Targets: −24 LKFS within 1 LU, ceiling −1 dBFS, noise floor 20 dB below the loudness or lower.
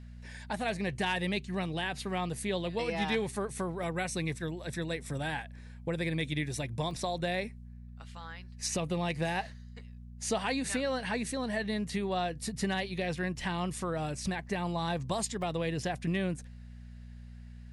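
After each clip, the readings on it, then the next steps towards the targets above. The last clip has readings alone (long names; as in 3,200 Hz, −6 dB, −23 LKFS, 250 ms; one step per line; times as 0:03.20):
number of dropouts 3; longest dropout 2.4 ms; mains hum 60 Hz; hum harmonics up to 240 Hz; level of the hum −45 dBFS; integrated loudness −34.0 LKFS; sample peak −19.0 dBFS; target loudness −24.0 LKFS
→ repair the gap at 0:03.83/0:06.91/0:15.42, 2.4 ms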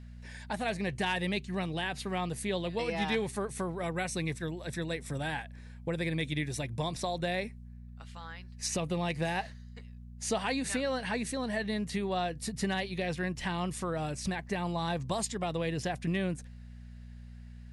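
number of dropouts 0; mains hum 60 Hz; hum harmonics up to 240 Hz; level of the hum −45 dBFS
→ hum removal 60 Hz, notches 4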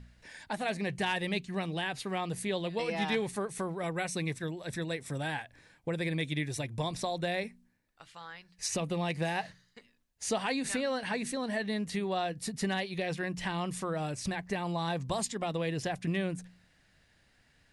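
mains hum none found; integrated loudness −34.0 LKFS; sample peak −19.0 dBFS; target loudness −24.0 LKFS
→ level +10 dB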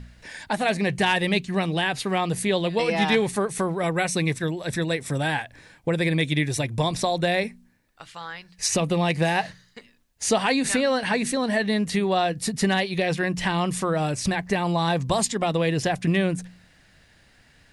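integrated loudness −24.0 LKFS; sample peak −9.0 dBFS; background noise floor −58 dBFS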